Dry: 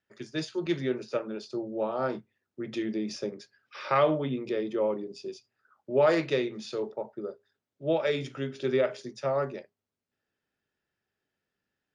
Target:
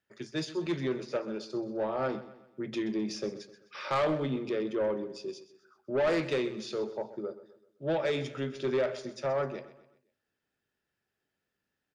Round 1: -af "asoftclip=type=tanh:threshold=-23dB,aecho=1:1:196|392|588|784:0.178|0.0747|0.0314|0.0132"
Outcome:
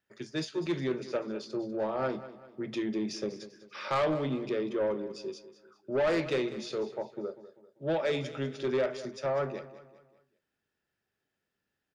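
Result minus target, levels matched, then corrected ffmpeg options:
echo 68 ms late
-af "asoftclip=type=tanh:threshold=-23dB,aecho=1:1:128|256|384|512:0.178|0.0747|0.0314|0.0132"

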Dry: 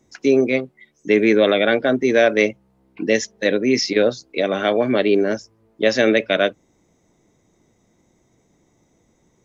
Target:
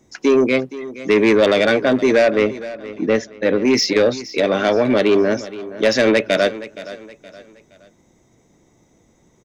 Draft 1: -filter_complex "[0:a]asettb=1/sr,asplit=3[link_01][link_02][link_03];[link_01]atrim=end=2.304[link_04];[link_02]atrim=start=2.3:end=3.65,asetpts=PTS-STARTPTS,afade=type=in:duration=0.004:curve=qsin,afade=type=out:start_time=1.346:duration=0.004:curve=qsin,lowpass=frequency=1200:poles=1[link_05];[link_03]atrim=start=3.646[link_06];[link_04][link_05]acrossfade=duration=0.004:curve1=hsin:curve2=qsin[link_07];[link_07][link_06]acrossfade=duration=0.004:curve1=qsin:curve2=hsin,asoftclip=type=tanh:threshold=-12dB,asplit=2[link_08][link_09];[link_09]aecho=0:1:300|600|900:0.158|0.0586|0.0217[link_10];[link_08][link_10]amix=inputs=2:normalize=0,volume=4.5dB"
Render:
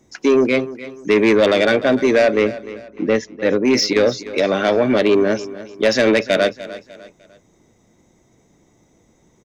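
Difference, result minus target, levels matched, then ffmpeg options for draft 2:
echo 170 ms early
-filter_complex "[0:a]asettb=1/sr,asplit=3[link_01][link_02][link_03];[link_01]atrim=end=2.304[link_04];[link_02]atrim=start=2.3:end=3.65,asetpts=PTS-STARTPTS,afade=type=in:duration=0.004:curve=qsin,afade=type=out:start_time=1.346:duration=0.004:curve=qsin,lowpass=frequency=1200:poles=1[link_05];[link_03]atrim=start=3.646[link_06];[link_04][link_05]acrossfade=duration=0.004:curve1=hsin:curve2=qsin[link_07];[link_07][link_06]acrossfade=duration=0.004:curve1=qsin:curve2=hsin,asoftclip=type=tanh:threshold=-12dB,asplit=2[link_08][link_09];[link_09]aecho=0:1:470|940|1410:0.158|0.0586|0.0217[link_10];[link_08][link_10]amix=inputs=2:normalize=0,volume=4.5dB"

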